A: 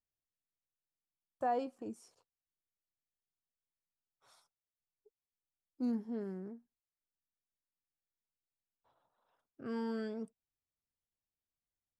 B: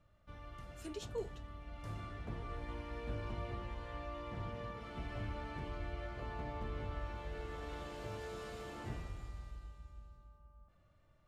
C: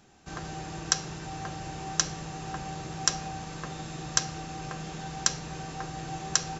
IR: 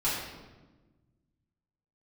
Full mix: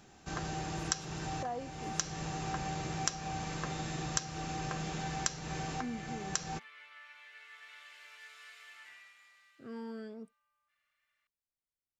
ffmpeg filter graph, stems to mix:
-filter_complex "[0:a]volume=-5dB,asplit=2[a][b];[1:a]highpass=f=2k:t=q:w=2.5,volume=-3dB[c];[2:a]volume=0.5dB[d];[b]apad=whole_len=290864[e];[d][e]sidechaincompress=threshold=-46dB:ratio=8:attack=5.1:release=488[f];[a][c][f]amix=inputs=3:normalize=0,acompressor=threshold=-32dB:ratio=3"

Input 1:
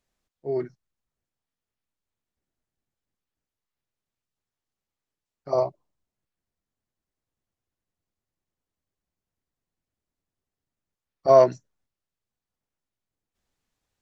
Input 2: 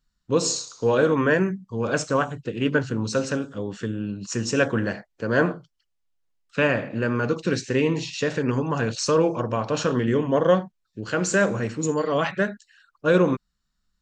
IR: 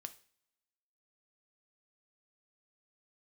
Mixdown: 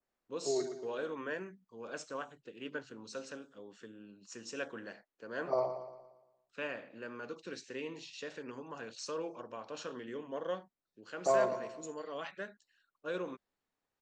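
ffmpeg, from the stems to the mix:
-filter_complex "[0:a]acrossover=split=210 2200:gain=0.251 1 0.251[a][b][c];[a][b][c]amix=inputs=3:normalize=0,acrossover=split=250|1200[d][e][f];[d]acompressor=threshold=-45dB:ratio=4[g];[e]acompressor=threshold=-27dB:ratio=4[h];[f]acompressor=threshold=-33dB:ratio=4[i];[g][h][i]amix=inputs=3:normalize=0,volume=-3.5dB,asplit=2[j][k];[k]volume=-9dB[l];[1:a]highpass=290,volume=-18.5dB[m];[l]aecho=0:1:116|232|348|464|580|696|812:1|0.48|0.23|0.111|0.0531|0.0255|0.0122[n];[j][m][n]amix=inputs=3:normalize=0,adynamicequalizer=threshold=0.00158:dfrequency=3600:dqfactor=1.1:tfrequency=3600:tqfactor=1.1:attack=5:release=100:ratio=0.375:range=2:mode=boostabove:tftype=bell"

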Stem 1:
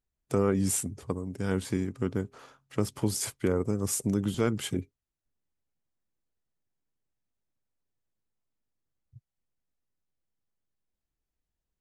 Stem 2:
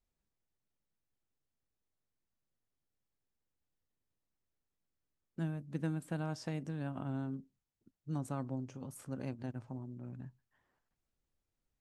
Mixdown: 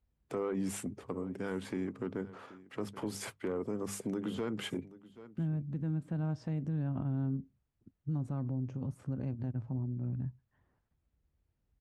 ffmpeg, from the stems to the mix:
-filter_complex "[0:a]acrossover=split=170 3200:gain=0.224 1 0.2[a][b][c];[a][b][c]amix=inputs=3:normalize=0,bandreject=f=50:t=h:w=6,bandreject=f=100:t=h:w=6,bandreject=f=150:t=h:w=6,bandreject=f=200:t=h:w=6,asoftclip=type=tanh:threshold=-20dB,volume=0.5dB,asplit=2[d][e];[e]volume=-22.5dB[f];[1:a]highpass=f=46:w=0.5412,highpass=f=46:w=1.3066,aemphasis=mode=reproduction:type=riaa,volume=0dB[g];[f]aecho=0:1:778:1[h];[d][g][h]amix=inputs=3:normalize=0,alimiter=level_in=3.5dB:limit=-24dB:level=0:latency=1:release=97,volume=-3.5dB"

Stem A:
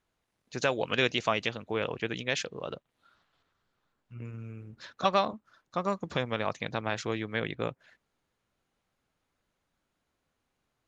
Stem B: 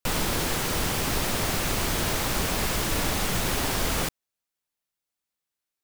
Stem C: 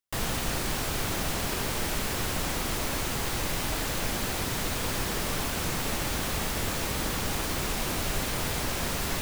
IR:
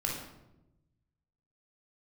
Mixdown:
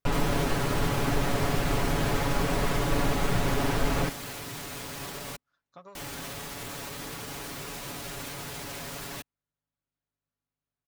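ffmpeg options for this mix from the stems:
-filter_complex "[0:a]acompressor=threshold=-27dB:ratio=6,aeval=exprs='val(0)+0.000178*(sin(2*PI*50*n/s)+sin(2*PI*2*50*n/s)/2+sin(2*PI*3*50*n/s)/3+sin(2*PI*4*50*n/s)/4+sin(2*PI*5*50*n/s)/5)':c=same,volume=-17dB[a];[1:a]lowpass=f=1.2k:p=1,volume=1dB[b];[2:a]volume=-5.5dB,asplit=3[c][d][e];[c]atrim=end=5.36,asetpts=PTS-STARTPTS,afade=t=out:st=5.356:d=0.004:c=hsin[f];[d]atrim=start=5.36:end=5.95,asetpts=PTS-STARTPTS,volume=0[g];[e]atrim=start=5.95,asetpts=PTS-STARTPTS,afade=t=in:d=0.004:c=hsin[h];[f][g][h]concat=n=3:v=0:a=1[i];[a][i]amix=inputs=2:normalize=0,highpass=f=82:p=1,alimiter=level_in=6.5dB:limit=-24dB:level=0:latency=1:release=19,volume=-6.5dB,volume=0dB[j];[b][j]amix=inputs=2:normalize=0,aecho=1:1:7.1:0.62"

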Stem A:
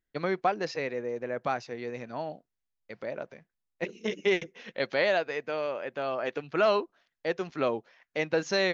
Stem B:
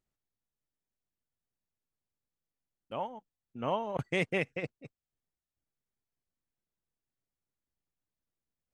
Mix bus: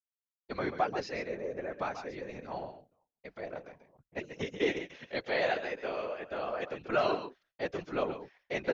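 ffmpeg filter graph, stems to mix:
-filter_complex "[0:a]adelay=350,volume=1.5dB,asplit=2[a][b];[b]volume=-10.5dB[c];[1:a]lowpass=1.1k,acompressor=threshold=-43dB:ratio=3,volume=-13dB,afade=t=in:st=3.34:d=0.77:silence=0.398107[d];[c]aecho=0:1:135:1[e];[a][d][e]amix=inputs=3:normalize=0,agate=range=-33dB:threshold=-56dB:ratio=3:detection=peak,afftfilt=real='hypot(re,im)*cos(2*PI*random(0))':imag='hypot(re,im)*sin(2*PI*random(1))':win_size=512:overlap=0.75"

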